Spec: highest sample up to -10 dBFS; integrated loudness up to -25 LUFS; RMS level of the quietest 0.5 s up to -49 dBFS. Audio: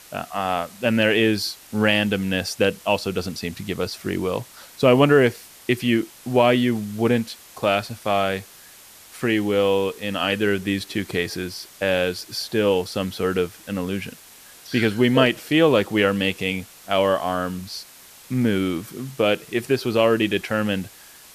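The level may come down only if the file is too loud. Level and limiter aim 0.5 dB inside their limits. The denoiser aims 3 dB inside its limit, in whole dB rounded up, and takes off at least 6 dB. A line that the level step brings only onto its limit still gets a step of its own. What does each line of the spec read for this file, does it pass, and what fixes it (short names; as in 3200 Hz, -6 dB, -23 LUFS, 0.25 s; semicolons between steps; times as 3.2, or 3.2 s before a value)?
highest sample -4.0 dBFS: fail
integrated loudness -22.0 LUFS: fail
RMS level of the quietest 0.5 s -46 dBFS: fail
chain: gain -3.5 dB; limiter -10.5 dBFS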